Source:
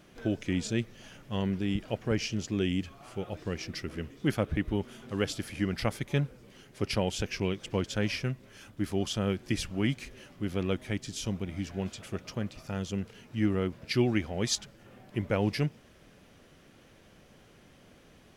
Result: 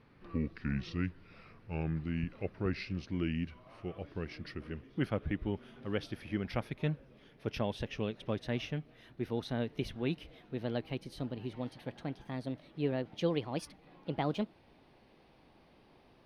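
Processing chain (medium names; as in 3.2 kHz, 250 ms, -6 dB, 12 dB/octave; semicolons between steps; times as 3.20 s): gliding tape speed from 73% -> 153%; boxcar filter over 6 samples; trim -5 dB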